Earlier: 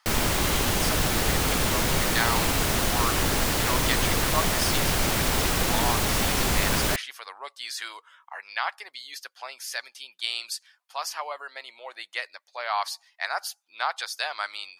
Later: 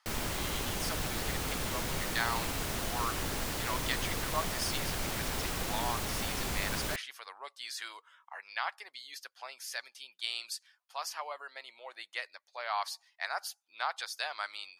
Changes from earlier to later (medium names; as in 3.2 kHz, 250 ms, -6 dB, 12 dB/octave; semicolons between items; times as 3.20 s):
speech -6.5 dB; background -11.0 dB